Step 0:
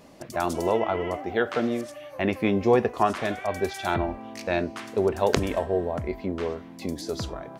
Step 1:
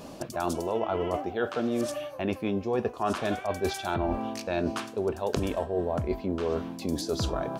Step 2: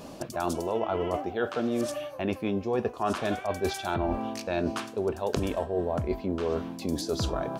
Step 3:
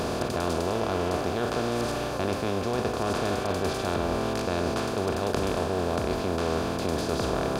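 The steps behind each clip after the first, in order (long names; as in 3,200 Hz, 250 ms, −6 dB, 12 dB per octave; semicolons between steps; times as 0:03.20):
parametric band 2,000 Hz −10.5 dB 0.29 octaves; reversed playback; downward compressor 10 to 1, threshold −33 dBFS, peak gain reduction 18.5 dB; reversed playback; level +8 dB
no processing that can be heard
compressor on every frequency bin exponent 0.2; level −7 dB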